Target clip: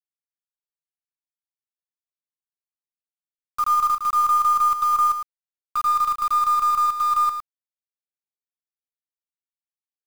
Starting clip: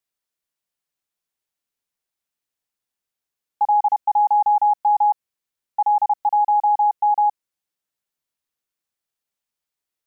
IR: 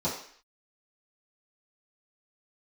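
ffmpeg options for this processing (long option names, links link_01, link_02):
-filter_complex "[0:a]lowpass=1000,afftdn=noise_reduction=25:noise_floor=-36,highpass=frequency=660:poles=1,agate=range=-33dB:threshold=-34dB:ratio=3:detection=peak,areverse,acompressor=mode=upward:threshold=-33dB:ratio=2.5,areverse,asetrate=64194,aresample=44100,atempo=0.686977,aeval=exprs='0.158*(cos(1*acos(clip(val(0)/0.158,-1,1)))-cos(1*PI/2))+0.00316*(cos(5*acos(clip(val(0)/0.158,-1,1)))-cos(5*PI/2))+0.00708*(cos(6*acos(clip(val(0)/0.158,-1,1)))-cos(6*PI/2))':channel_layout=same,acrusher=bits=5:mix=0:aa=0.000001,asplit=2[link_01][link_02];[link_02]aecho=0:1:109:0.398[link_03];[link_01][link_03]amix=inputs=2:normalize=0"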